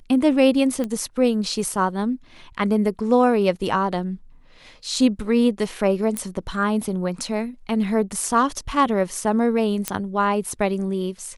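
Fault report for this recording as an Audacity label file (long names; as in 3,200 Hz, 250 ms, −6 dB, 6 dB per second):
0.840000	0.840000	click −15 dBFS
6.170000	6.170000	click −10 dBFS
9.880000	9.880000	click −5 dBFS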